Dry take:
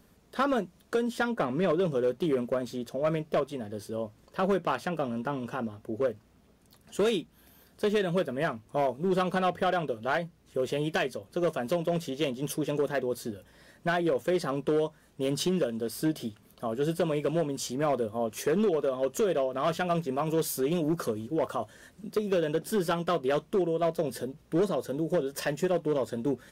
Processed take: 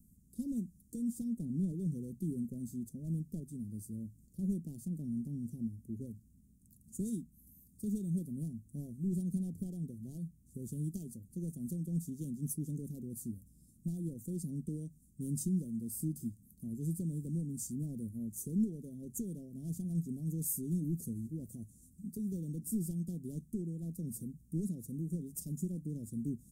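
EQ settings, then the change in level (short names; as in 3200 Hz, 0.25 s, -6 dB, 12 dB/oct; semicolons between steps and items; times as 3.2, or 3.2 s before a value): Chebyshev band-stop 250–7900 Hz, order 3; tone controls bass +11 dB, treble +5 dB; low shelf 310 Hz -6 dB; -5.0 dB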